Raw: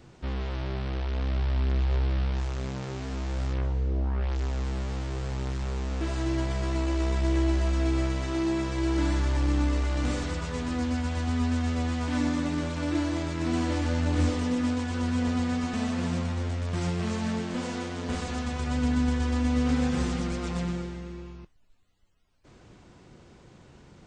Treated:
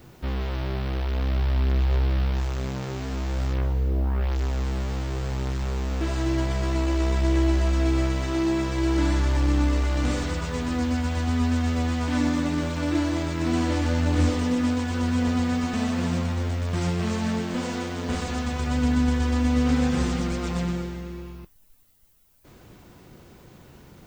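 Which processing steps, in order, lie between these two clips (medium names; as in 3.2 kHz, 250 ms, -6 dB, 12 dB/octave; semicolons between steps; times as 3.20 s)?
added noise violet -67 dBFS; trim +3.5 dB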